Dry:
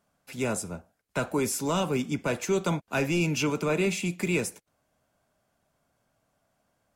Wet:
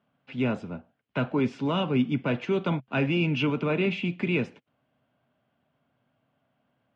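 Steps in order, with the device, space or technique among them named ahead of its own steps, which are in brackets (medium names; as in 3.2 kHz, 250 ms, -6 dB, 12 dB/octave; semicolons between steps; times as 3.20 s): guitar cabinet (cabinet simulation 91–3400 Hz, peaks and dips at 130 Hz +8 dB, 250 Hz +8 dB, 3 kHz +6 dB); trim -1 dB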